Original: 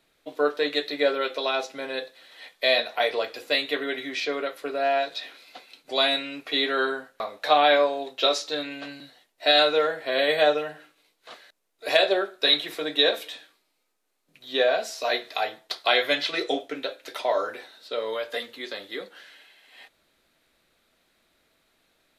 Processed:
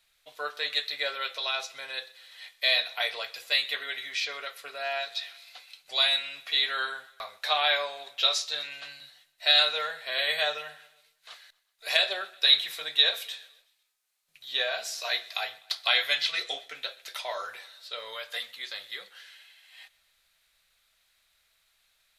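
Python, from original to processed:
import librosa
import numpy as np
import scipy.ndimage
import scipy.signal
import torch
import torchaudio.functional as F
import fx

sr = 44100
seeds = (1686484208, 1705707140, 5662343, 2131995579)

y = fx.tone_stack(x, sr, knobs='10-0-10')
y = fx.echo_feedback(y, sr, ms=126, feedback_pct=53, wet_db=-23.0)
y = y * 10.0 ** (2.5 / 20.0)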